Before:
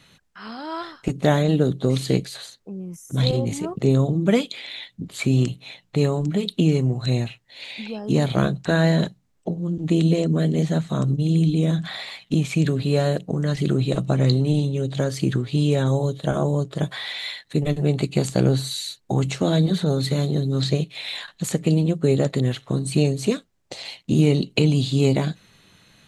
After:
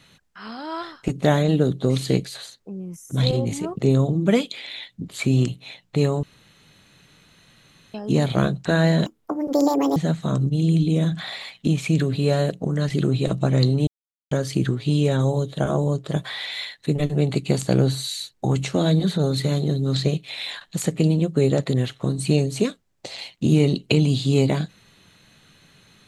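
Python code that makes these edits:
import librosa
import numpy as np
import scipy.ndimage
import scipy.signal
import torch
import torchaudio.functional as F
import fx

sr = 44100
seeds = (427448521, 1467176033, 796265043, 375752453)

y = fx.edit(x, sr, fx.room_tone_fill(start_s=6.23, length_s=1.71),
    fx.speed_span(start_s=9.06, length_s=1.57, speed=1.74),
    fx.silence(start_s=14.54, length_s=0.44), tone=tone)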